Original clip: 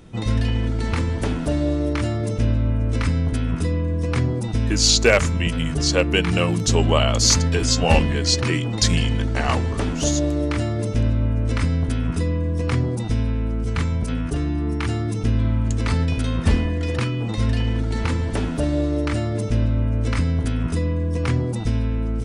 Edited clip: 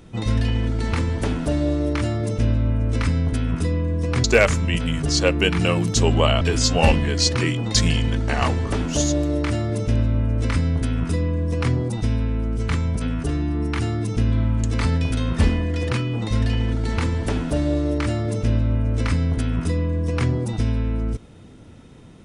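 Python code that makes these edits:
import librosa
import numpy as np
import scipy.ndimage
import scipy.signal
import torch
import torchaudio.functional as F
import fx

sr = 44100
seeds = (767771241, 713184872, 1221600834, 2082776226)

y = fx.edit(x, sr, fx.cut(start_s=4.24, length_s=0.72),
    fx.cut(start_s=7.13, length_s=0.35), tone=tone)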